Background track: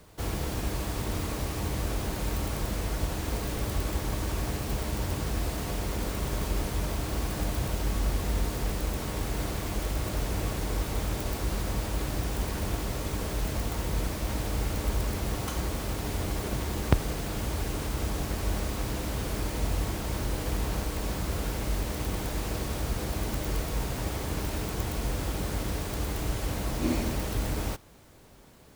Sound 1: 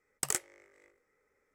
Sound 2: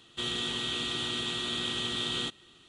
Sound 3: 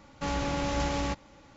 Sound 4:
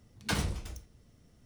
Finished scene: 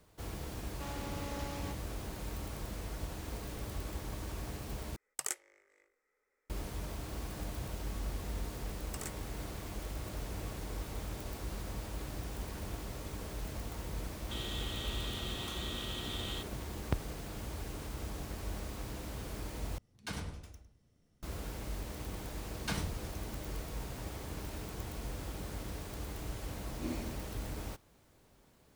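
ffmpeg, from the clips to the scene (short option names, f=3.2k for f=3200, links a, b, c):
-filter_complex "[1:a]asplit=2[a][b];[4:a]asplit=2[c][d];[0:a]volume=-10.5dB[e];[a]equalizer=f=120:w=0.66:g=-14[f];[b]asoftclip=type=tanh:threshold=-29.5dB[g];[c]asplit=2[h][i];[i]adelay=104,lowpass=f=2.1k:p=1,volume=-6dB,asplit=2[j][k];[k]adelay=104,lowpass=f=2.1k:p=1,volume=0.29,asplit=2[l][m];[m]adelay=104,lowpass=f=2.1k:p=1,volume=0.29,asplit=2[n][o];[o]adelay=104,lowpass=f=2.1k:p=1,volume=0.29[p];[h][j][l][n][p]amix=inputs=5:normalize=0[q];[e]asplit=3[r][s][t];[r]atrim=end=4.964[u];[f]atrim=end=1.54,asetpts=PTS-STARTPTS,volume=-5dB[v];[s]atrim=start=6.496:end=19.784[w];[q]atrim=end=1.45,asetpts=PTS-STARTPTS,volume=-10dB[x];[t]atrim=start=21.226[y];[3:a]atrim=end=1.56,asetpts=PTS-STARTPTS,volume=-13dB,afade=t=in:d=0.004:c=hsin,afade=t=out:st=1.556:d=0.004:c=hsin,adelay=590[z];[g]atrim=end=1.54,asetpts=PTS-STARTPTS,volume=-5.5dB,afade=t=in:d=0.004:c=hsin,afade=t=out:st=1.536:d=0.004:c=hsin,adelay=8710[aa];[2:a]atrim=end=2.68,asetpts=PTS-STARTPTS,volume=-10dB,afade=t=in:d=0.004:c=hsin,afade=t=out:st=2.676:d=0.004:c=hsin,adelay=14130[ab];[d]atrim=end=1.45,asetpts=PTS-STARTPTS,volume=-5.5dB,afade=t=in:d=0.004:c=hsin,afade=t=out:st=1.446:d=0.004:c=hsin,adelay=22390[ac];[u][v]acrossfade=d=0.004:c1=hsin:c2=hsin[ad];[ad][w]acrossfade=d=0.004:c1=hsin:c2=hsin[ae];[ae][x]acrossfade=d=0.004:c1=hsin:c2=hsin[af];[af][y]acrossfade=d=0.004:c1=hsin:c2=hsin[ag];[ag][z][aa][ab][ac]amix=inputs=5:normalize=0"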